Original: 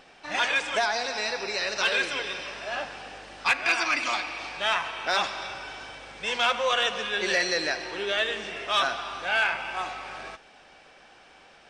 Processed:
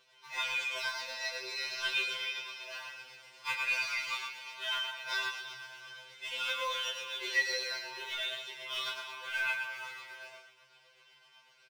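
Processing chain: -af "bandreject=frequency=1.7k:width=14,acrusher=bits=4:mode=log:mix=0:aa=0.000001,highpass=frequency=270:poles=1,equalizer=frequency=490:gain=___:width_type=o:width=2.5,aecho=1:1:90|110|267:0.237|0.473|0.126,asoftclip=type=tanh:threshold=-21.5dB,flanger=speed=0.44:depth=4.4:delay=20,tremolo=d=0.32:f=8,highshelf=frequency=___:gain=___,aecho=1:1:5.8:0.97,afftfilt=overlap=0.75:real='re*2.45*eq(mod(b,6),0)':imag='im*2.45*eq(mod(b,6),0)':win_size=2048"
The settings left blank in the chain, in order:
-13.5, 7.8k, -11.5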